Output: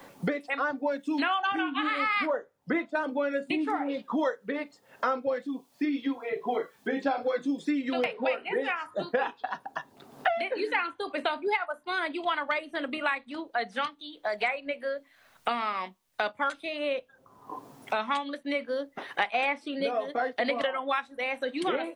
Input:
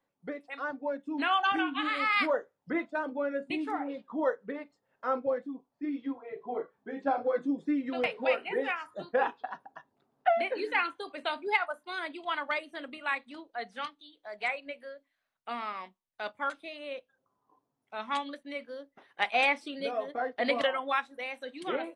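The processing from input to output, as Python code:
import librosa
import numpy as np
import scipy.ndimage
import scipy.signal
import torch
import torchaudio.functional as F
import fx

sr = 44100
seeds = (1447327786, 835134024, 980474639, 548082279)

y = fx.band_squash(x, sr, depth_pct=100)
y = y * 10.0 ** (2.0 / 20.0)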